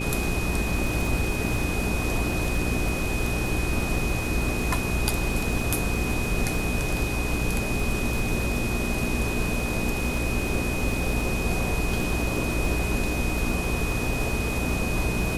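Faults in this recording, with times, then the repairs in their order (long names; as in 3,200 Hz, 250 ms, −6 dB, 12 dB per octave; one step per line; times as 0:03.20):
surface crackle 53 per second −31 dBFS
mains hum 60 Hz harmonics 7 −30 dBFS
whistle 2,500 Hz −32 dBFS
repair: click removal
notch filter 2,500 Hz, Q 30
hum removal 60 Hz, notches 7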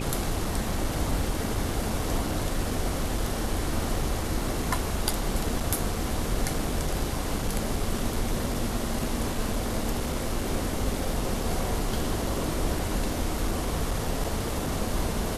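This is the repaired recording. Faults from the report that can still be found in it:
none of them is left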